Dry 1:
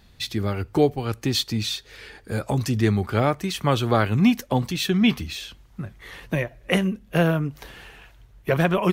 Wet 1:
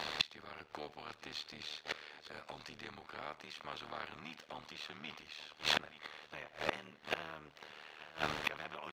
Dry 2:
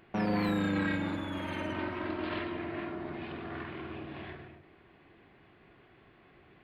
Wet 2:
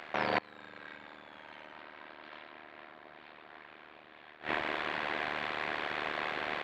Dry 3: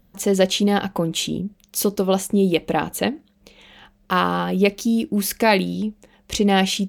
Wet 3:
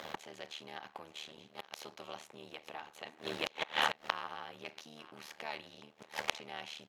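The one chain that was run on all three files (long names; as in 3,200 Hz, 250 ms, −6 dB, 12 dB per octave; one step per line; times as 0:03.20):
compressor on every frequency bin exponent 0.6
dynamic equaliser 500 Hz, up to −5 dB, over −29 dBFS, Q 2.2
single-tap delay 876 ms −17 dB
leveller curve on the samples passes 1
automatic gain control gain up to 12 dB
gate with flip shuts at −13 dBFS, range −28 dB
high-pass filter 81 Hz
three-way crossover with the lows and the highs turned down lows −18 dB, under 510 Hz, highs −16 dB, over 5,600 Hz
amplitude modulation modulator 76 Hz, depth 90%
level +3 dB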